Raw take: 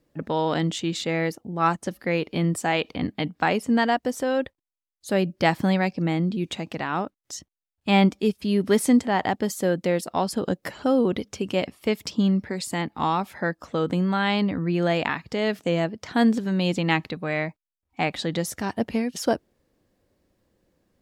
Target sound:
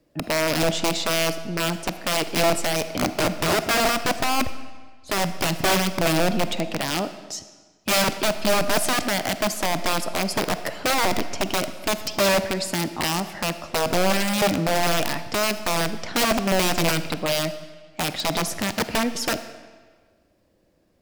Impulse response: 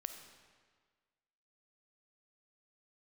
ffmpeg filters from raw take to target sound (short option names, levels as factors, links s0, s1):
-filter_complex "[0:a]asettb=1/sr,asplit=3[s0][s1][s2];[s0]atrim=end=3.134[s3];[s1]atrim=start=3.13:end=5.1,asetpts=PTS-STARTPTS,afade=t=in:d=0.004:c=qsin,afade=t=out:st=1.966:d=0.004:c=qsin,aemphasis=mode=reproduction:type=riaa[s4];[s2]atrim=start=5.096[s5];[s3][s4]acrossfade=d=0.004:c1=hsin:c2=qsin[s6];[s6][s5]acrossfade=d=0.004:c1=qsin:c2=hsin,acrossover=split=280|3000[s7][s8][s9];[s8]acompressor=threshold=0.0562:ratio=10[s10];[s7][s10][s9]amix=inputs=3:normalize=0,aeval=exprs='(mod(9.44*val(0)+1,2)-1)/9.44':c=same,asplit=2[s11][s12];[s12]equalizer=f=315:t=o:w=0.33:g=6,equalizer=f=630:t=o:w=0.33:g=12,equalizer=f=2500:t=o:w=0.33:g=5,equalizer=f=5000:t=o:w=0.33:g=6[s13];[1:a]atrim=start_sample=2205,asetrate=48510,aresample=44100[s14];[s13][s14]afir=irnorm=-1:irlink=0,volume=1.58[s15];[s11][s15]amix=inputs=2:normalize=0,volume=0.668"